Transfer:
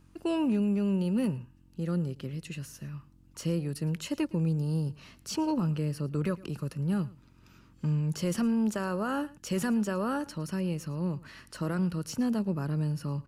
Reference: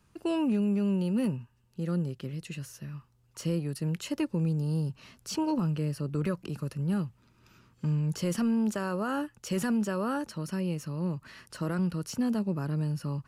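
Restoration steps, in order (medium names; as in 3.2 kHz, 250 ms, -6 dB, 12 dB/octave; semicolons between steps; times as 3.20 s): de-hum 45.2 Hz, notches 7; inverse comb 111 ms -21.5 dB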